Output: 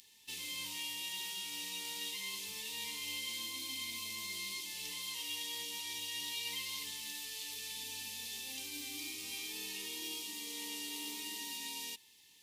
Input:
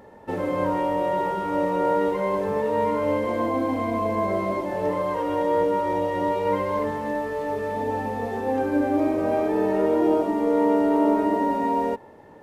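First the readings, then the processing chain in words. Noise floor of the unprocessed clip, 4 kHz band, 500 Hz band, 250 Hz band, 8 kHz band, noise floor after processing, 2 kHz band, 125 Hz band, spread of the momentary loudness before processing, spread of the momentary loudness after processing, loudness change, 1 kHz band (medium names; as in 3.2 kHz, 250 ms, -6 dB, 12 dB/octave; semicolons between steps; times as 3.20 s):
-47 dBFS, +9.5 dB, -37.5 dB, -30.0 dB, no reading, -63 dBFS, -8.5 dB, -28.0 dB, 7 LU, 3 LU, -16.0 dB, -29.5 dB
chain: inverse Chebyshev high-pass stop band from 1.6 kHz, stop band 40 dB; trim +12.5 dB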